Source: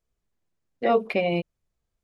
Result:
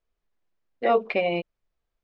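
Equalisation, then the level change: distance through air 150 m; peaking EQ 110 Hz -11 dB 2.8 oct; +3.0 dB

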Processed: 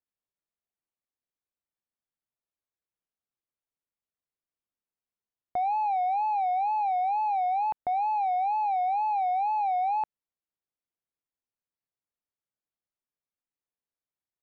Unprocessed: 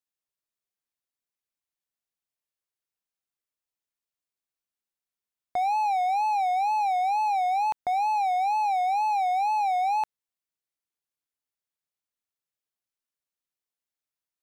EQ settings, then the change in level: distance through air 250 m; tilt shelf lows +4 dB, about 1.4 kHz; -3.0 dB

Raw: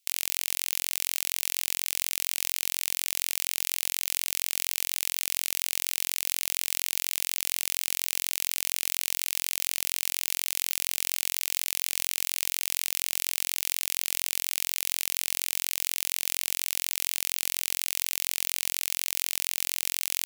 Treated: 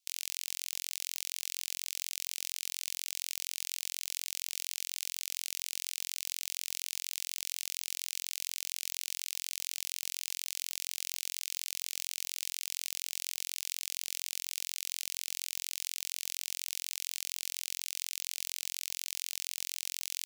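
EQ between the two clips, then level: high-pass 140 Hz; differentiator; three-band isolator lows -16 dB, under 480 Hz, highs -16 dB, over 6.7 kHz; 0.0 dB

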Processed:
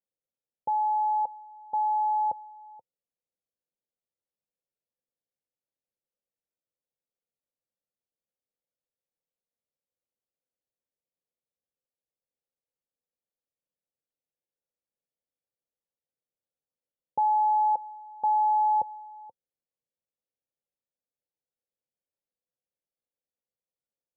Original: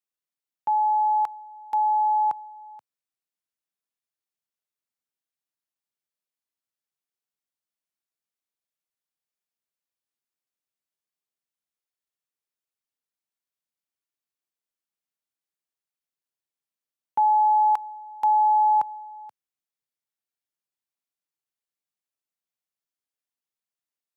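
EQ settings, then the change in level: Chebyshev low-pass 910 Hz, order 8; bass shelf 400 Hz +9.5 dB; peaking EQ 520 Hz +13 dB 0.44 oct; -6.5 dB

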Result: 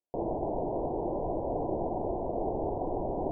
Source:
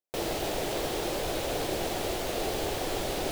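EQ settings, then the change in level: rippled Chebyshev low-pass 1 kHz, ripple 3 dB; +2.0 dB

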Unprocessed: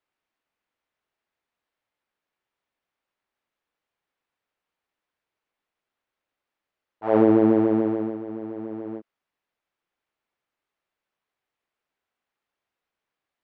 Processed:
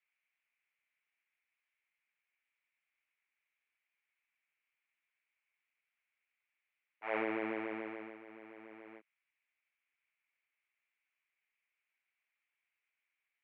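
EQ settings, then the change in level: band-pass filter 2.3 kHz, Q 5.5; distance through air 130 m; +9.5 dB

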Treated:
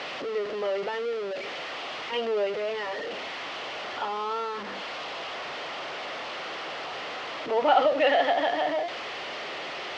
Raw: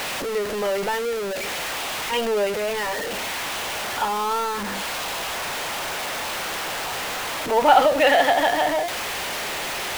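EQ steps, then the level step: cabinet simulation 110–4200 Hz, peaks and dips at 110 Hz -4 dB, 200 Hz -6 dB, 910 Hz -6 dB, 1.6 kHz -6 dB, 2.4 kHz -4 dB, 3.8 kHz -5 dB; bass shelf 170 Hz -7.5 dB; -3.0 dB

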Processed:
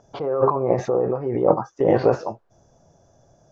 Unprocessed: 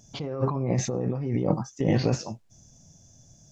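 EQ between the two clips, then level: low-pass 4.1 kHz 12 dB/octave; high-order bell 740 Hz +15 dB 2.5 oct; -3.5 dB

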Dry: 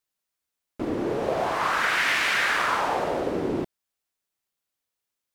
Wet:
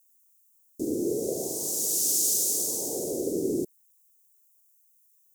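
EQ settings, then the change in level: elliptic band-stop 410–6500 Hz, stop band 80 dB; RIAA curve recording; +5.5 dB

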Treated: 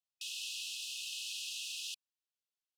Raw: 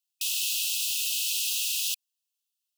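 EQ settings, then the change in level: distance through air 65 m; -8.5 dB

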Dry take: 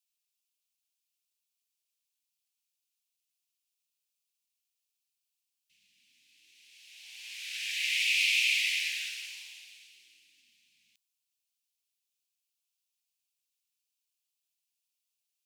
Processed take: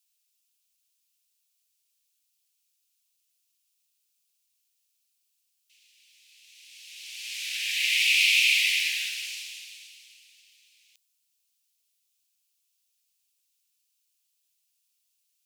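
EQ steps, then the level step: high-pass 1.1 kHz 12 dB/octave; treble shelf 2.4 kHz +8.5 dB; dynamic bell 6.9 kHz, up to -4 dB, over -37 dBFS, Q 0.73; +2.0 dB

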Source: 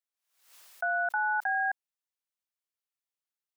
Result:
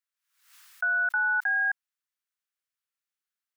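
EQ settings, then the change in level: resonant high-pass 1.4 kHz, resonance Q 1.8; 0.0 dB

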